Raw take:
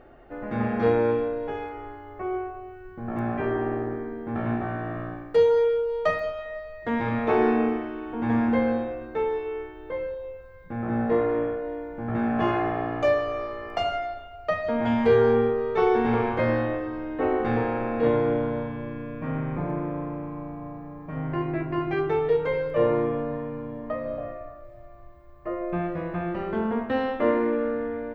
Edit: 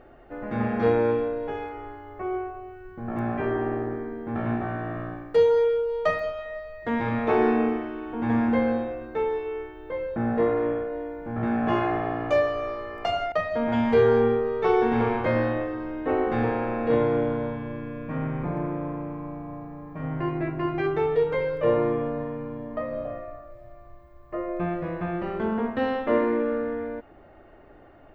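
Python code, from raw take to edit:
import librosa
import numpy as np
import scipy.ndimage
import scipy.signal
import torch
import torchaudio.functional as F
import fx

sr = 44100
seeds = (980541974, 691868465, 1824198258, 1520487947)

y = fx.edit(x, sr, fx.cut(start_s=10.16, length_s=0.72),
    fx.cut(start_s=14.04, length_s=0.41), tone=tone)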